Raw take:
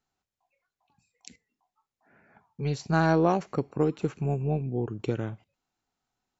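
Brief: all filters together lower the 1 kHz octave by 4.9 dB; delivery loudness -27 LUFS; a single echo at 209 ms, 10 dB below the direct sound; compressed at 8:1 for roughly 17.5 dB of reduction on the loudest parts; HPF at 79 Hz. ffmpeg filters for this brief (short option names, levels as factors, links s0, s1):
-af "highpass=79,equalizer=f=1000:t=o:g=-7,acompressor=threshold=0.0112:ratio=8,aecho=1:1:209:0.316,volume=7.5"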